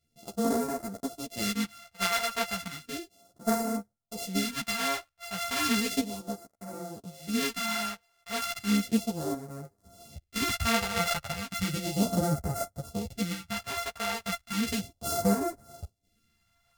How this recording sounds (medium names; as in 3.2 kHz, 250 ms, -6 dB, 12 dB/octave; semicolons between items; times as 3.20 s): a buzz of ramps at a fixed pitch in blocks of 64 samples; phasing stages 2, 0.34 Hz, lowest notch 260–2900 Hz; random-step tremolo 1.5 Hz, depth 65%; a shimmering, thickened sound